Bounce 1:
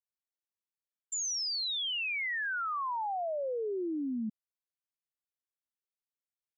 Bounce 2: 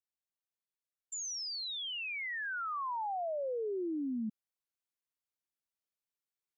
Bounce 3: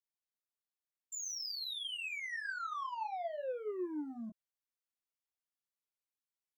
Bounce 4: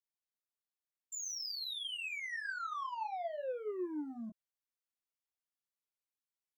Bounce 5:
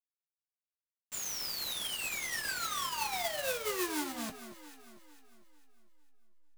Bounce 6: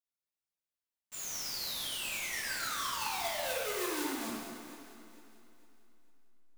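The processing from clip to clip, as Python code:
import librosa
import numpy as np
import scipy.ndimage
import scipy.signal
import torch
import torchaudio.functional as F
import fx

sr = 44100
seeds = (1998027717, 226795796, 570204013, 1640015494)

y1 = fx.rider(x, sr, range_db=10, speed_s=0.5)
y1 = F.gain(torch.from_numpy(y1), -3.5).numpy()
y2 = fx.low_shelf(y1, sr, hz=200.0, db=-4.5)
y2 = fx.leveller(y2, sr, passes=1)
y2 = fx.chorus_voices(y2, sr, voices=6, hz=0.5, base_ms=18, depth_ms=4.7, mix_pct=40)
y2 = F.gain(torch.from_numpy(y2), -1.0).numpy()
y3 = y2
y4 = fx.spec_flatten(y3, sr, power=0.32)
y4 = fx.backlash(y4, sr, play_db=-44.0)
y4 = fx.echo_alternate(y4, sr, ms=225, hz=1400.0, feedback_pct=62, wet_db=-10.0)
y4 = F.gain(torch.from_numpy(y4), 5.5).numpy()
y5 = fx.rev_plate(y4, sr, seeds[0], rt60_s=1.9, hf_ratio=0.8, predelay_ms=0, drr_db=-4.5)
y5 = F.gain(torch.from_numpy(y5), -6.0).numpy()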